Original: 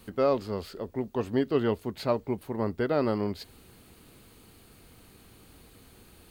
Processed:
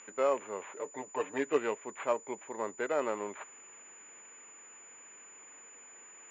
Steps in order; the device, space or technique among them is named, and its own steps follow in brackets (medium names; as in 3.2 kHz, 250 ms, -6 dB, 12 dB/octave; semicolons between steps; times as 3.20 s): 0.76–1.58 s: comb 6.7 ms, depth 87%; toy sound module (decimation joined by straight lines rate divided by 8×; class-D stage that switches slowly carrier 7 kHz; cabinet simulation 690–3800 Hz, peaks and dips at 730 Hz -6 dB, 1.3 kHz -4 dB, 2.4 kHz +5 dB); trim +3 dB